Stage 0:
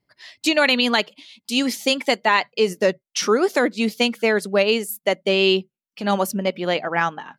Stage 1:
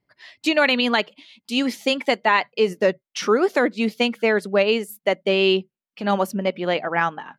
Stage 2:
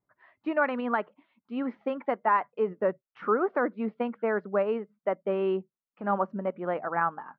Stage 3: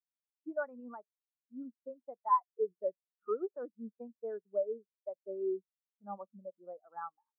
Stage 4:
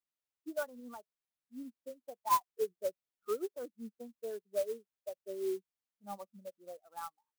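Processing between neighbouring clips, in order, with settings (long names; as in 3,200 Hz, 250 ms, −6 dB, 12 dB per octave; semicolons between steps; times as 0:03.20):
bass and treble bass −1 dB, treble −9 dB
transistor ladder low-pass 1,500 Hz, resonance 45%
every bin expanded away from the loudest bin 2.5 to 1; level −5.5 dB
converter with an unsteady clock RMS 0.04 ms; level −1 dB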